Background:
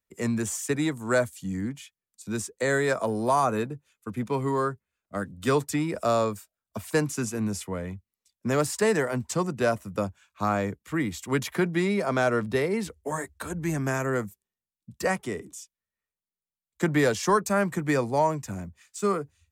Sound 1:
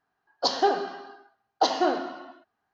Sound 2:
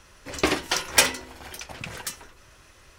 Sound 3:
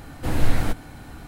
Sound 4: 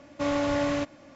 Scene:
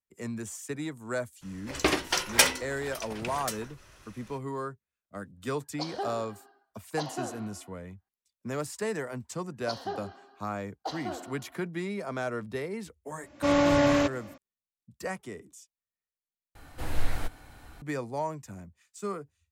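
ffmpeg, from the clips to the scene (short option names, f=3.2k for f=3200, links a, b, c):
-filter_complex "[1:a]asplit=2[a][b];[0:a]volume=-9dB[c];[4:a]dynaudnorm=f=120:g=3:m=9dB[d];[3:a]equalizer=f=190:t=o:w=2:g=-9[e];[c]asplit=2[f][g];[f]atrim=end=16.554[h];[e]atrim=end=1.27,asetpts=PTS-STARTPTS,volume=-7dB[i];[g]atrim=start=17.816[j];[2:a]atrim=end=2.98,asetpts=PTS-STARTPTS,volume=-2.5dB,afade=t=in:d=0.02,afade=t=out:st=2.96:d=0.02,adelay=1410[k];[a]atrim=end=2.73,asetpts=PTS-STARTPTS,volume=-12.5dB,afade=t=in:d=0.004:c=hsin,afade=t=out:st=2.726:d=0.004:c=hsin,adelay=5360[l];[b]atrim=end=2.73,asetpts=PTS-STARTPTS,volume=-13.5dB,afade=t=in:d=0.004:c=hsin,afade=t=out:st=2.726:d=0.004:c=hsin,adelay=9240[m];[d]atrim=end=1.15,asetpts=PTS-STARTPTS,volume=-5dB,afade=t=in:d=0.004:c=hsin,afade=t=out:st=1.146:d=0.004:c=hsin,adelay=13230[n];[h][i]acrossfade=d=0.004:c1=hsin:c2=hsin[o];[o][j]acrossfade=d=0.004:c1=hsin:c2=hsin[p];[p][k][l][m][n]amix=inputs=5:normalize=0"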